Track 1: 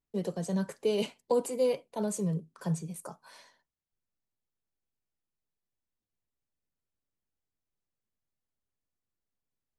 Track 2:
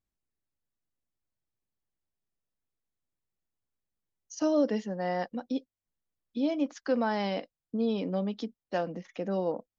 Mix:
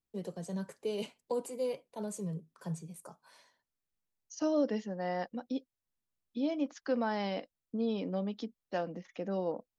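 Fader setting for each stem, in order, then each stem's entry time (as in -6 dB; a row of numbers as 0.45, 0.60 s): -7.0, -4.0 dB; 0.00, 0.00 s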